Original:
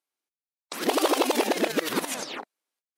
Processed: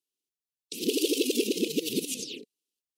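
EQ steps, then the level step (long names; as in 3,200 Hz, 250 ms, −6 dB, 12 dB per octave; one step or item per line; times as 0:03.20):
Chebyshev band-stop filter 450–2,700 Hz, order 4
0.0 dB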